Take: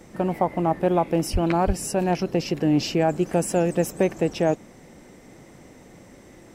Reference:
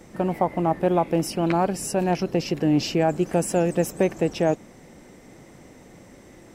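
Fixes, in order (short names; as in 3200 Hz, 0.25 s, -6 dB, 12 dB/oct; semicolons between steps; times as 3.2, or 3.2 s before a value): 1.32–1.44 HPF 140 Hz 24 dB/oct; 1.66–1.78 HPF 140 Hz 24 dB/oct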